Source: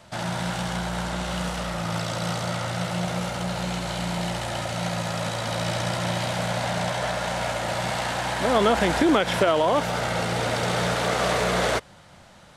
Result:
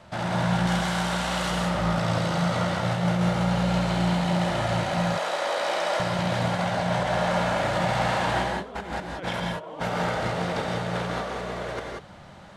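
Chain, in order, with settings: 0.67–1.51 tilt +2.5 dB/oct; 4.98–6 HPF 370 Hz 24 dB/oct; high shelf 4400 Hz -12 dB; negative-ratio compressor -28 dBFS, ratio -0.5; non-linear reverb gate 0.21 s rising, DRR 0.5 dB; gain -1 dB

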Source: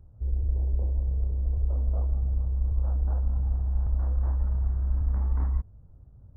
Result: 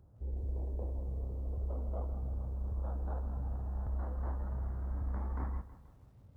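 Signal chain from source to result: HPF 200 Hz 6 dB/oct; lo-fi delay 0.16 s, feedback 55%, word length 11-bit, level -14.5 dB

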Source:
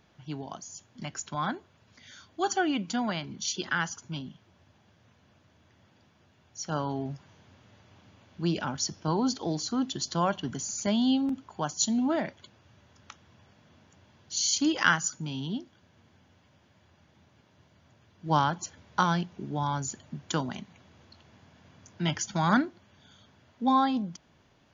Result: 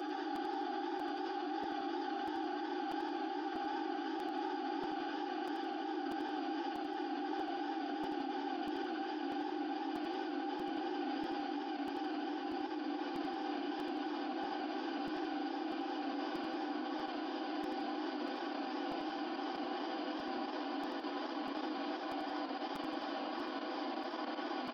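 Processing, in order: Doppler pass-by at 8.99, 12 m/s, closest 11 m; steep low-pass 5300 Hz 96 dB/oct; bell 2600 Hz -4 dB 1.3 oct; reverb RT60 3.8 s, pre-delay 90 ms, DRR 7 dB; Paulstretch 50×, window 1.00 s, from 2.44; comb 6.2 ms, depth 80%; feedback echo 0.596 s, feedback 54%, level -21 dB; level quantiser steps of 12 dB; elliptic high-pass 260 Hz, stop band 40 dB; crackling interface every 0.64 s, samples 256, repeat, from 0.35; warbling echo 86 ms, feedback 53%, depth 158 cents, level -6.5 dB; gain +8.5 dB

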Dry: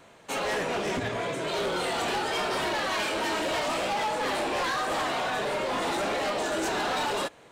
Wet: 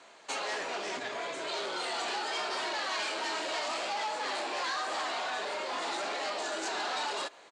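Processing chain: compressor, threshold -32 dBFS, peak gain reduction 5 dB; speaker cabinet 420–8500 Hz, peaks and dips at 500 Hz -5 dB, 4500 Hz +6 dB, 7000 Hz +3 dB; speakerphone echo 0.14 s, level -23 dB

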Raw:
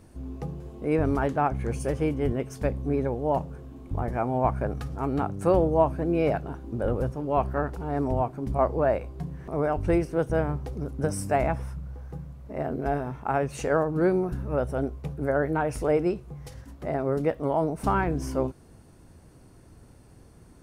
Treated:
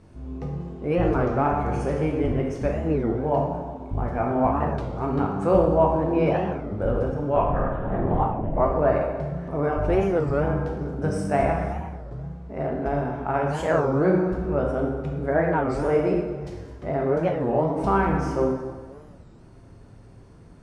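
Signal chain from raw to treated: air absorption 81 m; 7.36–8.6 LPC vocoder at 8 kHz whisper; plate-style reverb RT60 1.5 s, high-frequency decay 0.7×, DRR -1 dB; record warp 33 1/3 rpm, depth 250 cents

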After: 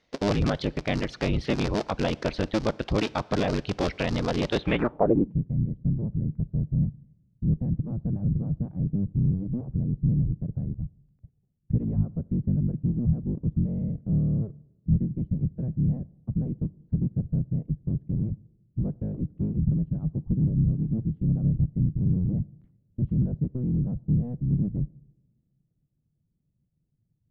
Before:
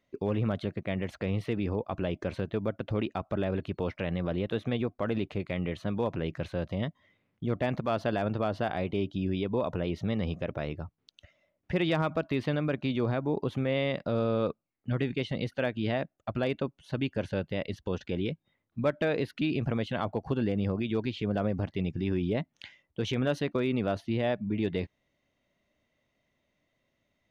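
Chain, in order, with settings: cycle switcher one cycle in 3, inverted; reverb removal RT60 0.5 s; two-slope reverb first 0.95 s, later 2.8 s, from -20 dB, DRR 19.5 dB; low-pass sweep 5100 Hz -> 150 Hz, 4.56–5.37; gain +5.5 dB

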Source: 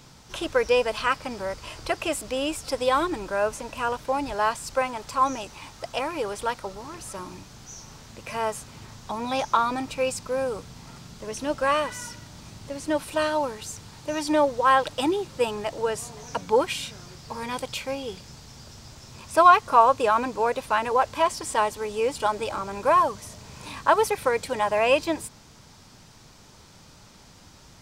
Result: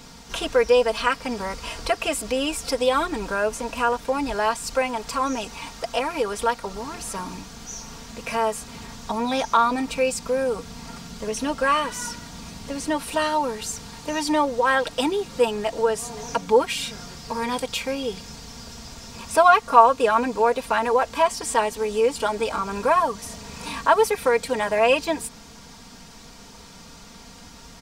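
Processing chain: comb 4.3 ms, depth 66%; in parallel at 0 dB: compressor, threshold -31 dBFS, peak gain reduction 21.5 dB; on the sum: gain -1 dB

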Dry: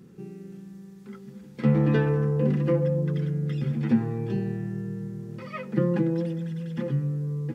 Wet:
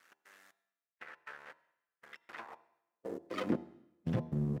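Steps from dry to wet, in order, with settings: octaver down 1 oct, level +1 dB; thin delay 0.233 s, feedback 45%, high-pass 3100 Hz, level -14.5 dB; step gate "x.xx...." 72 bpm -60 dB; time stretch by phase-locked vocoder 0.61×; low shelf 98 Hz +11.5 dB; compressor 6:1, threshold -24 dBFS, peak gain reduction 14 dB; low shelf 200 Hz -9.5 dB; half-wave rectifier; high-pass sweep 1600 Hz -> 140 Hz, 2.16–3.92; resonator 340 Hz, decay 0.98 s, mix 40%; de-hum 78.92 Hz, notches 13; on a send at -23 dB: reverb RT60 0.95 s, pre-delay 71 ms; on the sum: gain +8 dB

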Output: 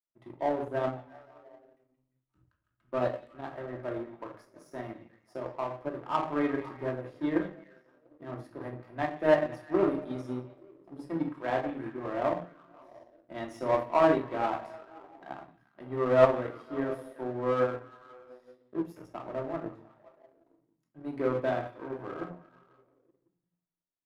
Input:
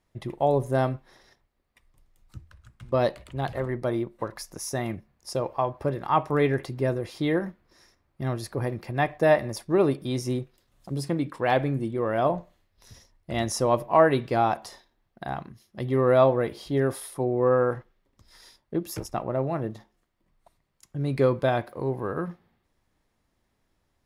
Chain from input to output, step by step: three-band isolator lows -18 dB, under 190 Hz, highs -14 dB, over 2200 Hz; delay with a stepping band-pass 0.174 s, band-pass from 2900 Hz, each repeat -0.7 oct, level -7.5 dB; shoebox room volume 590 m³, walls furnished, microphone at 2.8 m; power-law curve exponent 1.4; gain -4 dB

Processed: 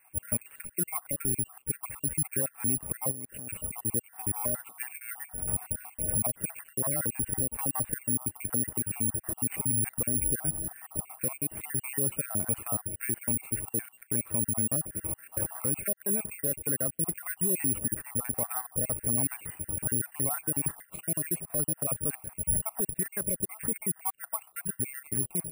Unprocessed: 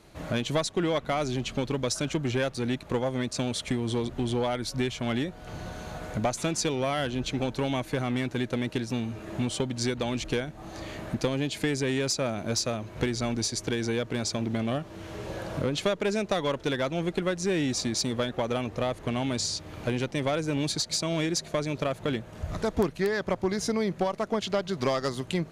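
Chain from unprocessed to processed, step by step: random spectral dropouts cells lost 59%; low shelf 240 Hz +10 dB; limiter -23.5 dBFS, peak gain reduction 14.5 dB; 3.11–3.86 negative-ratio compressor -40 dBFS, ratio -1; brick-wall FIR band-stop 2800–8000 Hz; careless resampling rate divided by 4×, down none, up zero stuff; gain -3 dB

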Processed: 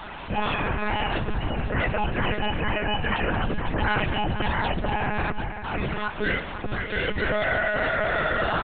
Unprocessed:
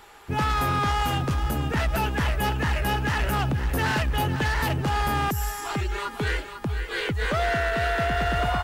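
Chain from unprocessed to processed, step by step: delta modulation 64 kbps, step -30.5 dBFS; HPF 46 Hz 24 dB/oct; low shelf 67 Hz -10 dB; comb 2 ms, depth 74%; loudest bins only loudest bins 64; split-band echo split 1900 Hz, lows 0.725 s, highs 0.141 s, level -13 dB; monotone LPC vocoder at 8 kHz 210 Hz

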